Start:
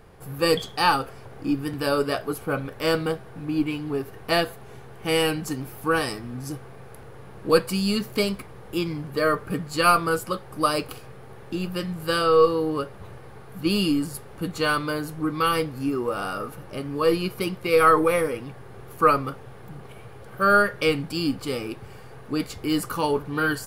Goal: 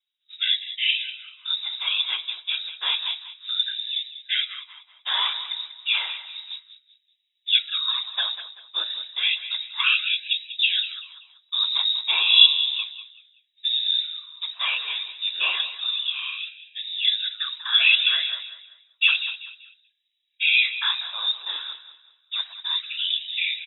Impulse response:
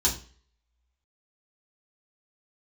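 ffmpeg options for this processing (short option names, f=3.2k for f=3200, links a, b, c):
-filter_complex "[0:a]agate=range=-32dB:threshold=-33dB:ratio=16:detection=peak,asettb=1/sr,asplit=3[a][b][c];[a]atrim=end=10.304[d];[b]atrim=start=10.3:end=12.53,asetpts=PTS-STARTPTS,afade=t=in:d=0.004:c=qsin,afade=t=out:st=2.226:d=0.004:c=qsin,lowshelf=f=460:g=10[e];[c]atrim=start=12.526[f];[d][e]acrossfade=d=0.004:c1=hsin:c2=qsin[g];[g][f]acrossfade=d=0.004:c1=qsin:c2=hsin,afftfilt=real='hypot(re,im)*cos(2*PI*random(0))':imag='hypot(re,im)*sin(2*PI*random(1))':win_size=512:overlap=0.75,aecho=1:1:192|384|576:0.224|0.0761|0.0259,lowpass=f=3.3k:t=q:w=0.5098,lowpass=f=3.3k:t=q:w=0.6013,lowpass=f=3.3k:t=q:w=0.9,lowpass=f=3.3k:t=q:w=2.563,afreqshift=-3900,afftfilt=real='re*gte(b*sr/1024,280*pow(1700/280,0.5+0.5*sin(2*PI*0.31*pts/sr)))':imag='im*gte(b*sr/1024,280*pow(1700/280,0.5+0.5*sin(2*PI*0.31*pts/sr)))':win_size=1024:overlap=0.75,volume=4dB"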